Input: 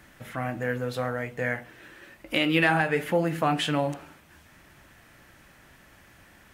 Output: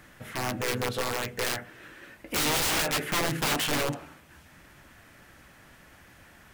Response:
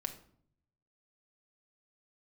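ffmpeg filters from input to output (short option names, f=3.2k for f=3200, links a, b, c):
-filter_complex "[0:a]aeval=exprs='(mod(12.6*val(0)+1,2)-1)/12.6':c=same,asplit=2[a][b];[b]asetrate=37084,aresample=44100,atempo=1.18921,volume=-7dB[c];[a][c]amix=inputs=2:normalize=0"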